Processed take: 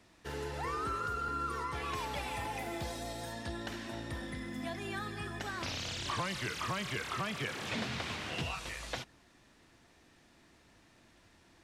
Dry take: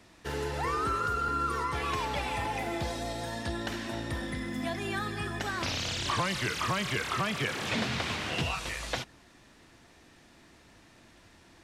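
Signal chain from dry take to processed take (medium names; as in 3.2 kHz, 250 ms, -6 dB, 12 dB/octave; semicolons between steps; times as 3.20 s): 1.95–3.33 s: treble shelf 9.5 kHz +9.5 dB; trim -6 dB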